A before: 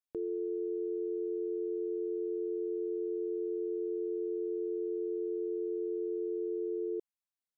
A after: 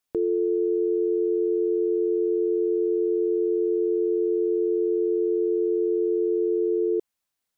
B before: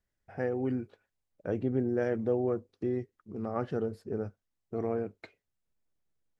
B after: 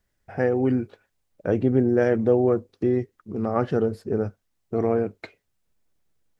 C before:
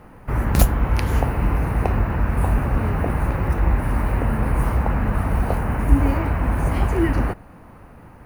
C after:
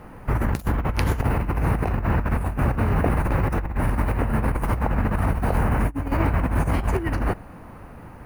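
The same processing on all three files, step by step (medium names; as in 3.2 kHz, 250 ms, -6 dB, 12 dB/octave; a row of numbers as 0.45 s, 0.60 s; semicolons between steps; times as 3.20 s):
compressor with a negative ratio -21 dBFS, ratio -0.5; normalise loudness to -24 LUFS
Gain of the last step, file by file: +12.0 dB, +9.5 dB, 0.0 dB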